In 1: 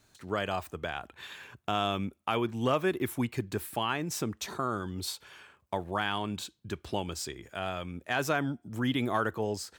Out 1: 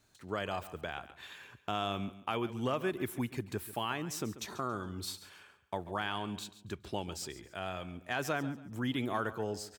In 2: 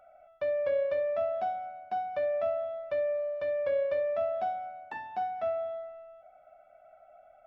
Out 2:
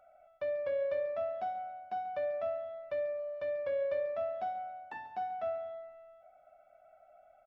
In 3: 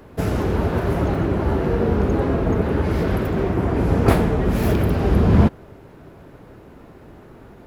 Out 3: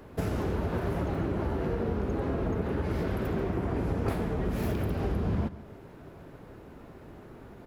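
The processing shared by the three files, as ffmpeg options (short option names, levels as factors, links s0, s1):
-af "acompressor=threshold=0.0794:ratio=6,aecho=1:1:139|278|417:0.178|0.0516|0.015,volume=0.596"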